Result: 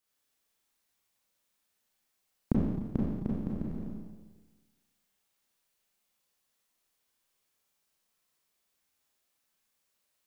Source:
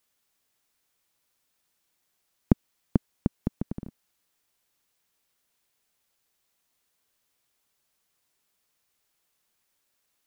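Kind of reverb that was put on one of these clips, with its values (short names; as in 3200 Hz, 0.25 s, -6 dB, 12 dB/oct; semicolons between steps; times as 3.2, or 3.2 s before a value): Schroeder reverb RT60 1.3 s, combs from 29 ms, DRR -5 dB; gain -9 dB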